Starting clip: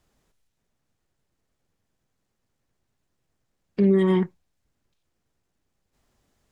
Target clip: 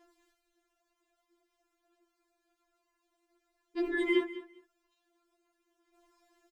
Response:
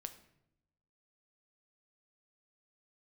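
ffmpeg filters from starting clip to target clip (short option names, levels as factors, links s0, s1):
-filter_complex "[0:a]highpass=41,highshelf=f=3400:g=-9,aphaser=in_gain=1:out_gain=1:delay=4.8:decay=0.42:speed=0.51:type=sinusoidal,asplit=2[s0][s1];[s1]aecho=0:1:202|404:0.168|0.0285[s2];[s0][s2]amix=inputs=2:normalize=0,afftfilt=real='re*4*eq(mod(b,16),0)':imag='im*4*eq(mod(b,16),0)':win_size=2048:overlap=0.75,volume=2.24"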